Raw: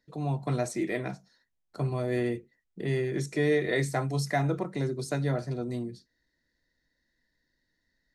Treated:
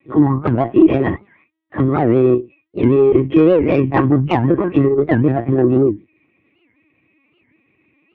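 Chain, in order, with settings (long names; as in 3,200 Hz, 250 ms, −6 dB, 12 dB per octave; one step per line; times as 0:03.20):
partials spread apart or drawn together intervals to 113%
linear-prediction vocoder at 8 kHz pitch kept
downward compressor 12 to 1, threshold −29 dBFS, peak gain reduction 9 dB
high-pass filter 87 Hz 24 dB per octave
treble cut that deepens with the level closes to 1,700 Hz, closed at −35.5 dBFS
tube saturation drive 29 dB, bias 0.35
hollow resonant body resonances 320/1,100/1,900 Hz, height 13 dB, ringing for 40 ms
boost into a limiter +22 dB
wow of a warped record 78 rpm, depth 250 cents
level −1 dB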